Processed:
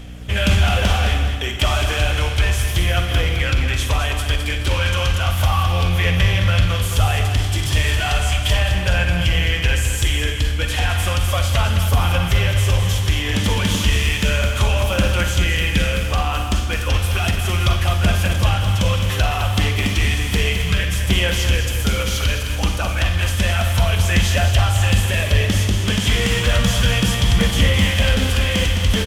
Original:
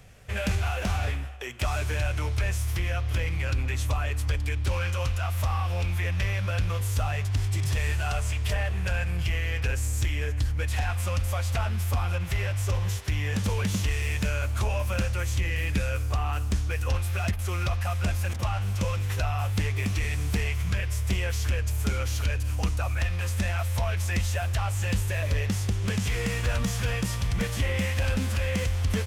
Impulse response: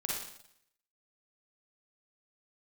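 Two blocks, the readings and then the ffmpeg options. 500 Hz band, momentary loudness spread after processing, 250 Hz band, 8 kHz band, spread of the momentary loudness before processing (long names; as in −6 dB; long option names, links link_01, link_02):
+10.0 dB, 4 LU, +10.0 dB, +10.5 dB, 1 LU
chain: -filter_complex "[0:a]equalizer=frequency=3200:width=5.2:gain=10.5,aphaser=in_gain=1:out_gain=1:delay=3.4:decay=0.25:speed=0.33:type=sinusoidal,aecho=1:1:212|424|636|848|1060:0.398|0.163|0.0669|0.0274|0.0112,asplit=2[link_01][link_02];[1:a]atrim=start_sample=2205[link_03];[link_02][link_03]afir=irnorm=-1:irlink=0,volume=-4dB[link_04];[link_01][link_04]amix=inputs=2:normalize=0,aeval=exprs='val(0)+0.0126*(sin(2*PI*60*n/s)+sin(2*PI*2*60*n/s)/2+sin(2*PI*3*60*n/s)/3+sin(2*PI*4*60*n/s)/4+sin(2*PI*5*60*n/s)/5)':channel_layout=same,volume=4.5dB"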